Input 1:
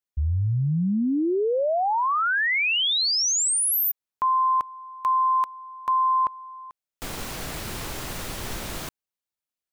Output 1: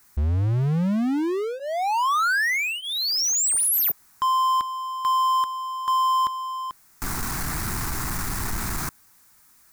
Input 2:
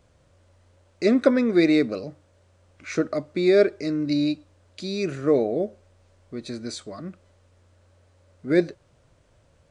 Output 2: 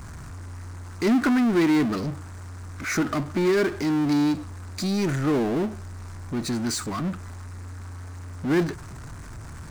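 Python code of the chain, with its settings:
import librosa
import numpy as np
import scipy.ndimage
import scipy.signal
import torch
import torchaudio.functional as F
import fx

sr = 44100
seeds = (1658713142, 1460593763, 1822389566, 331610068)

y = fx.fixed_phaser(x, sr, hz=1300.0, stages=4)
y = fx.power_curve(y, sr, exponent=0.5)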